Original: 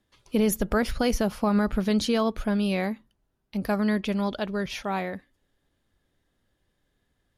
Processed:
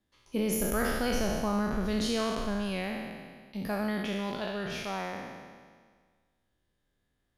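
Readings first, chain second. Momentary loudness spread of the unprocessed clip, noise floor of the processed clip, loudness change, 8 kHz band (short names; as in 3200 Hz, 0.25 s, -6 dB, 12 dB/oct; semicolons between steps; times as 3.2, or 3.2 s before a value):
8 LU, -78 dBFS, -5.5 dB, -1.0 dB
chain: spectral trails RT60 1.69 s; gain -8.5 dB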